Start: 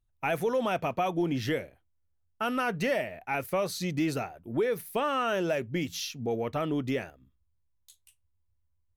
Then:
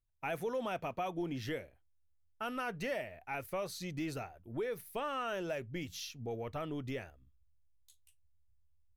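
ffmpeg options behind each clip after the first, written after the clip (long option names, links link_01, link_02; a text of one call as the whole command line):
ffmpeg -i in.wav -af "asubboost=boost=4.5:cutoff=86,volume=-8.5dB" out.wav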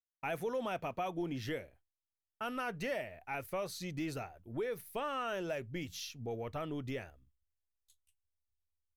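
ffmpeg -i in.wav -af "agate=range=-33dB:threshold=-57dB:ratio=3:detection=peak" out.wav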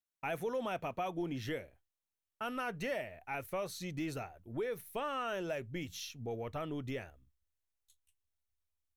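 ffmpeg -i in.wav -af "bandreject=frequency=4800:width=11" out.wav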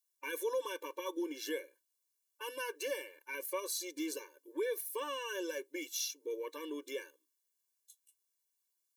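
ffmpeg -i in.wav -af "bass=frequency=250:gain=-7,treble=frequency=4000:gain=12,afftfilt=real='re*eq(mod(floor(b*sr/1024/300),2),1)':imag='im*eq(mod(floor(b*sr/1024/300),2),1)':win_size=1024:overlap=0.75,volume=2.5dB" out.wav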